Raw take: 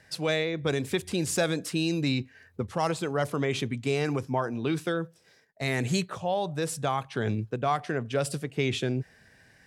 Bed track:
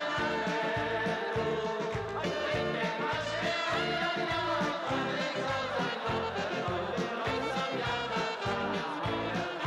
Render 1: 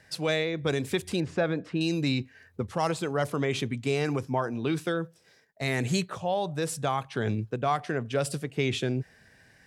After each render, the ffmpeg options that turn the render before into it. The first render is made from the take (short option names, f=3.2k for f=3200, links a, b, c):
-filter_complex "[0:a]asettb=1/sr,asplit=3[a][b][c];[a]atrim=end=1.204[d];[b]atrim=start=1.2:end=1.81,asetpts=PTS-STARTPTS,afade=t=in:d=0.004:c=qsin,afade=t=out:st=0.606:d=0.004:c=qsin,lowpass=2k[e];[c]atrim=start=1.806[f];[d][e]acrossfade=d=0.004:c1=hsin:c2=qsin[g];[g][f]acrossfade=d=0.004:c1=qsin:c2=hsin"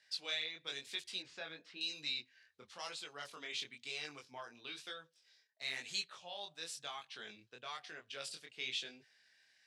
-af "bandpass=f=4k:t=q:w=1.5:csg=0,flanger=delay=19.5:depth=5.7:speed=1"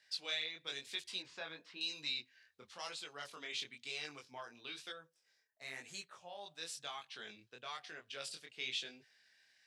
-filter_complex "[0:a]asettb=1/sr,asplit=3[a][b][c];[a]atrim=end=1.084[d];[b]atrim=start=1.08:end=2.07,asetpts=PTS-STARTPTS,afade=t=in:d=0.004:c=qsin,afade=t=out:st=0.986:d=0.004:c=qsin,equalizer=f=1k:t=o:w=0.37:g=8[e];[c]atrim=start=2.066[f];[d][e]acrossfade=d=0.004:c1=hsin:c2=qsin[g];[g][f]acrossfade=d=0.004:c1=qsin:c2=hsin,asettb=1/sr,asplit=3[h][i][j];[h]atrim=end=4.924[k];[i]atrim=start=4.92:end=6.46,asetpts=PTS-STARTPTS,afade=t=in:d=0.004:c=qsin,afade=t=out:st=1.536:d=0.004:c=qsin,equalizer=f=3.7k:t=o:w=1.3:g=-11.5[l];[j]atrim=start=6.456[m];[k][l]acrossfade=d=0.004:c1=hsin:c2=qsin[n];[n][m]acrossfade=d=0.004:c1=qsin:c2=hsin"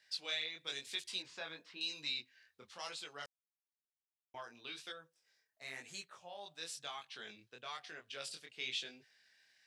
-filter_complex "[0:a]asettb=1/sr,asplit=3[a][b][c];[a]atrim=end=0.524[d];[b]atrim=start=0.52:end=1.63,asetpts=PTS-STARTPTS,afade=t=in:d=0.004:c=qsin,afade=t=out:st=1.106:d=0.004:c=qsin,equalizer=f=9.1k:w=0.57:g=4[e];[c]atrim=start=1.626[f];[d][e]acrossfade=d=0.004:c1=hsin:c2=qsin[g];[g][f]acrossfade=d=0.004:c1=qsin:c2=hsin,asplit=3[h][i][j];[h]atrim=end=3.26,asetpts=PTS-STARTPTS,afade=t=out:st=3.256:d=0.004:c=hsin[k];[i]atrim=start=3.26:end=4.34,asetpts=PTS-STARTPTS,volume=0[l];[j]atrim=start=4.34,asetpts=PTS-STARTPTS,afade=t=in:d=0.004:c=hsin[m];[k][l][m]concat=n=3:v=0:a=1"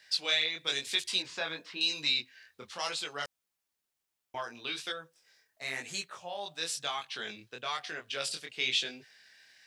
-af "volume=10.5dB"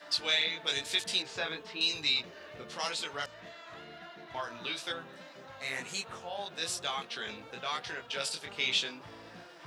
-filter_complex "[1:a]volume=-17.5dB[a];[0:a][a]amix=inputs=2:normalize=0"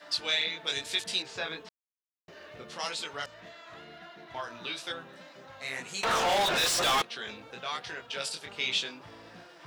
-filter_complex "[0:a]asettb=1/sr,asplit=3[a][b][c];[a]atrim=end=6.034[d];[b]atrim=start=6.03:end=7.02,asetpts=PTS-STARTPTS,afade=t=in:d=0.004:c=qsin,afade=t=out:st=0.986:d=0.004:c=qsin,asplit=2[e][f];[f]highpass=f=720:p=1,volume=37dB,asoftclip=type=tanh:threshold=-18.5dB[g];[e][g]amix=inputs=2:normalize=0,lowpass=f=5.1k:p=1,volume=-6dB[h];[c]atrim=start=7.016[i];[d][h]acrossfade=d=0.004:c1=hsin:c2=qsin[j];[j][i]acrossfade=d=0.004:c1=qsin:c2=hsin,asplit=3[k][l][m];[k]atrim=end=1.69,asetpts=PTS-STARTPTS,afade=t=out:st=1.686:d=0.004:c=hsin[n];[l]atrim=start=1.69:end=2.28,asetpts=PTS-STARTPTS,volume=0[o];[m]atrim=start=2.28,asetpts=PTS-STARTPTS,afade=t=in:d=0.004:c=hsin[p];[n][o][p]concat=n=3:v=0:a=1"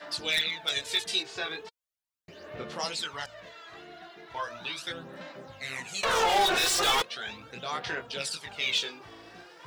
-af "aphaser=in_gain=1:out_gain=1:delay=2.7:decay=0.58:speed=0.38:type=sinusoidal,aeval=exprs='0.141*(abs(mod(val(0)/0.141+3,4)-2)-1)':c=same"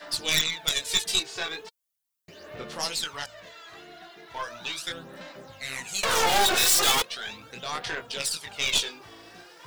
-af "aeval=exprs='0.141*(cos(1*acos(clip(val(0)/0.141,-1,1)))-cos(1*PI/2))+0.0562*(cos(2*acos(clip(val(0)/0.141,-1,1)))-cos(2*PI/2))':c=same,crystalizer=i=1.5:c=0"